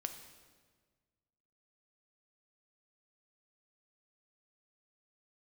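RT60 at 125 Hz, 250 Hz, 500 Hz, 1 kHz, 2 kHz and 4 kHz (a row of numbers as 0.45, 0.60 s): 2.1, 1.8, 1.6, 1.4, 1.3, 1.2 s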